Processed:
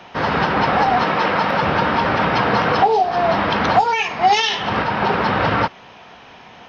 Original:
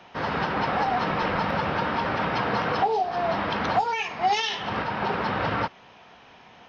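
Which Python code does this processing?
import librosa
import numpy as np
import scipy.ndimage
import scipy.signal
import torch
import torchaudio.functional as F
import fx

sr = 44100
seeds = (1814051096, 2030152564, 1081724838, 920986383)

y = fx.highpass(x, sr, hz=250.0, slope=6, at=(1.03, 1.62))
y = F.gain(torch.from_numpy(y), 8.5).numpy()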